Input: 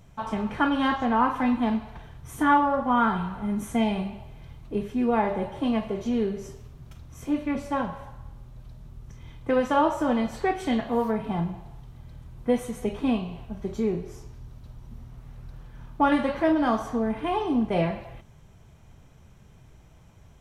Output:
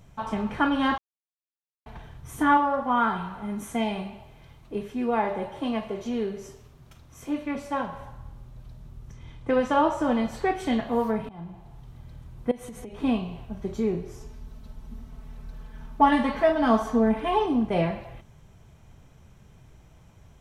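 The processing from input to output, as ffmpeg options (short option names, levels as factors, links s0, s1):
-filter_complex "[0:a]asettb=1/sr,asplit=3[s0][s1][s2];[s0]atrim=end=2.574[s3];[s1]atrim=start=2.57:end=7.93,asetpts=PTS-STARTPTS,afade=t=in:d=0.004:c=qsin,afade=t=out:st=5.356:d=0.004:c=qsin,lowshelf=f=220:g=-8.5[s4];[s2]atrim=start=7.926[s5];[s3][s4]acrossfade=d=0.004:c1=hsin:c2=qsin[s6];[s6][s5]acrossfade=d=0.004:c1=qsin:c2=hsin,asettb=1/sr,asplit=3[s7][s8][s9];[s7]atrim=end=9.134[s10];[s8]atrim=start=9.13:end=10.04,asetpts=PTS-STARTPTS,afade=t=in:d=0.004:c=qsin,afade=t=out:st=0.906:d=0.004:c=qsin,lowpass=9900[s11];[s9]atrim=start=10.036[s12];[s10][s11]acrossfade=d=0.004:c1=hsin:c2=qsin[s13];[s13][s12]acrossfade=d=0.004:c1=qsin:c2=hsin,asettb=1/sr,asplit=3[s14][s15][s16];[s14]atrim=end=12.514[s17];[s15]atrim=start=12.51:end=13,asetpts=PTS-STARTPTS,afade=t=in:d=0.004:c=qsin,afade=t=out:st=0.486:d=0.004:c=qsin,acompressor=threshold=0.0178:ratio=16:attack=3.2:release=140:knee=1:detection=peak[s18];[s16]atrim=start=12.996[s19];[s17][s18]acrossfade=d=0.004:c1=hsin:c2=qsin[s20];[s20][s19]acrossfade=d=0.004:c1=qsin:c2=hsin,asettb=1/sr,asplit=3[s21][s22][s23];[s21]atrim=end=14.204[s24];[s22]atrim=start=14.2:end=17.46,asetpts=PTS-STARTPTS,afade=t=in:d=0.004:c=qsin,afade=t=out:st=3.256:d=0.004:c=qsin,aecho=1:1:4.6:0.81,atrim=end_sample=143766[s25];[s23]atrim=start=17.456[s26];[s24][s25]acrossfade=d=0.004:c1=hsin:c2=qsin[s27];[s27][s26]acrossfade=d=0.004:c1=qsin:c2=hsin,asplit=4[s28][s29][s30][s31];[s28]atrim=end=0.98,asetpts=PTS-STARTPTS,afade=t=out:st=0.976:d=0.004:c=hsin[s32];[s29]atrim=start=0.98:end=1.86,asetpts=PTS-STARTPTS,volume=0[s33];[s30]atrim=start=1.86:end=11.29,asetpts=PTS-STARTPTS,afade=t=in:d=0.004:c=hsin,afade=t=out:st=9.426:d=0.004:c=hsin:silence=0.0707946[s34];[s31]atrim=start=11.29,asetpts=PTS-STARTPTS,afade=t=in:d=0.62:silence=0.0707946[s35];[s32][s33][s34][s35]concat=n=4:v=0:a=1"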